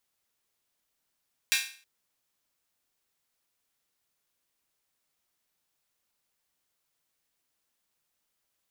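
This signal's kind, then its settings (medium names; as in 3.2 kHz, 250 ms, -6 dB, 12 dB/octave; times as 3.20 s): open hi-hat length 0.32 s, high-pass 2.1 kHz, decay 0.43 s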